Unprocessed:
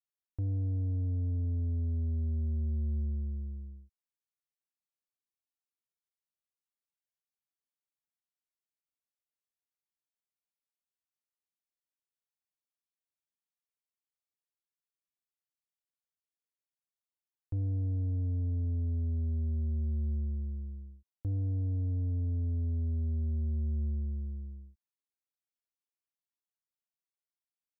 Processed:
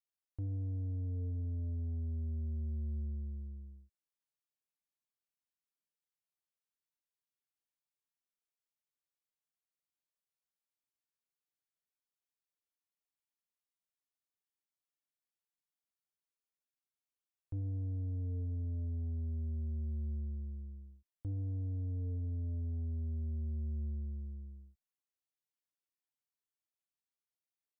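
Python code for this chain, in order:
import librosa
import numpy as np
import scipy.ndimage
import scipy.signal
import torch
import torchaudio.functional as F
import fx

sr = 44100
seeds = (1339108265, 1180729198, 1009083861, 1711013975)

y = fx.comb_fb(x, sr, f0_hz=150.0, decay_s=0.7, harmonics='all', damping=0.0, mix_pct=70)
y = F.gain(torch.from_numpy(y), 4.0).numpy()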